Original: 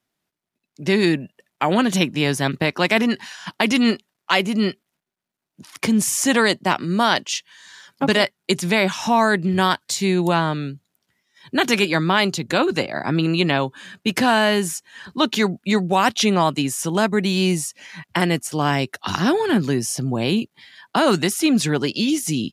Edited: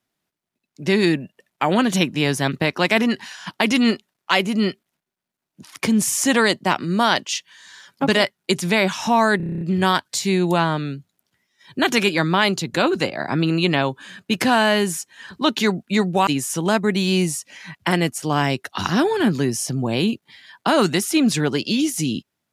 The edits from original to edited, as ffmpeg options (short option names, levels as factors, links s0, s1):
-filter_complex "[0:a]asplit=10[s0][s1][s2][s3][s4][s5][s6][s7][s8][s9];[s0]atrim=end=9.402[s10];[s1]atrim=start=9.368:end=9.402[s11];[s2]atrim=start=9.368:end=9.402[s12];[s3]atrim=start=9.368:end=9.402[s13];[s4]atrim=start=9.368:end=9.402[s14];[s5]atrim=start=9.368:end=9.402[s15];[s6]atrim=start=9.368:end=9.402[s16];[s7]atrim=start=9.368:end=9.402[s17];[s8]atrim=start=9.368:end=16.032[s18];[s9]atrim=start=16.558[s19];[s10][s11]acrossfade=d=0.004:c1=hsin:c2=hsin[s20];[s20][s12]acrossfade=d=0.004:c1=hsin:c2=hsin[s21];[s21][s13]acrossfade=d=0.004:c1=hsin:c2=hsin[s22];[s22][s14]acrossfade=d=0.004:c1=hsin:c2=hsin[s23];[s23][s15]acrossfade=d=0.004:c1=hsin:c2=hsin[s24];[s24][s16]acrossfade=d=0.004:c1=hsin:c2=hsin[s25];[s25][s17]acrossfade=d=0.004:c1=hsin:c2=hsin[s26];[s26][s18]acrossfade=d=0.004:c1=hsin:c2=hsin[s27];[s27][s19]acrossfade=d=0.004:c1=hsin:c2=hsin"